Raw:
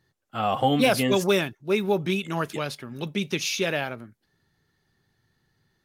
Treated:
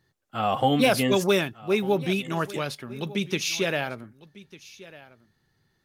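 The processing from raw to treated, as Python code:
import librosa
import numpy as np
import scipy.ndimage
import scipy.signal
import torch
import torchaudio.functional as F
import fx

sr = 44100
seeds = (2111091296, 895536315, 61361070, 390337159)

y = x + 10.0 ** (-19.5 / 20.0) * np.pad(x, (int(1199 * sr / 1000.0), 0))[:len(x)]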